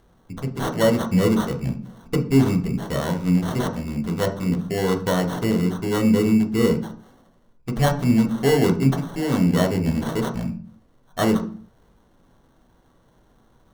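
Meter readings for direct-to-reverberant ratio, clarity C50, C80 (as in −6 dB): 2.5 dB, 11.5 dB, 16.0 dB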